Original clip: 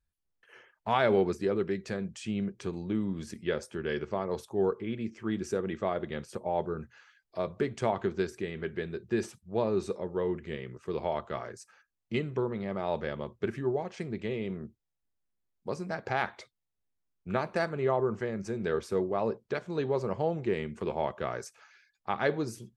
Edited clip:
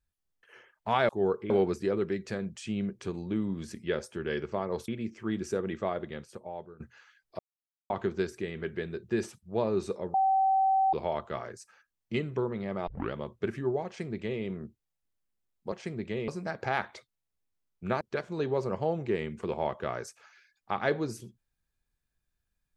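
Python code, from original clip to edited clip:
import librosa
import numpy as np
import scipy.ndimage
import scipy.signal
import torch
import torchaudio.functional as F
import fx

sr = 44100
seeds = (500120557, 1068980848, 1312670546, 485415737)

y = fx.edit(x, sr, fx.move(start_s=4.47, length_s=0.41, to_s=1.09),
    fx.fade_out_to(start_s=5.78, length_s=1.02, floor_db=-21.0),
    fx.silence(start_s=7.39, length_s=0.51),
    fx.bleep(start_s=10.14, length_s=0.79, hz=770.0, db=-21.5),
    fx.tape_start(start_s=12.87, length_s=0.26),
    fx.duplicate(start_s=13.86, length_s=0.56, to_s=15.72),
    fx.cut(start_s=17.45, length_s=1.94), tone=tone)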